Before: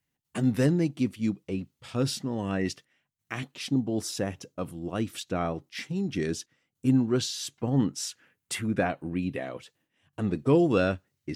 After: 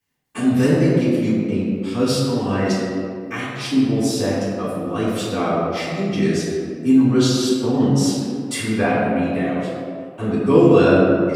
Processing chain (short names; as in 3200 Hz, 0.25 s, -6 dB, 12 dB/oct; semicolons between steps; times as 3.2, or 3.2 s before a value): low shelf 110 Hz -10 dB; reverb RT60 2.5 s, pre-delay 3 ms, DRR -11.5 dB; gain -1 dB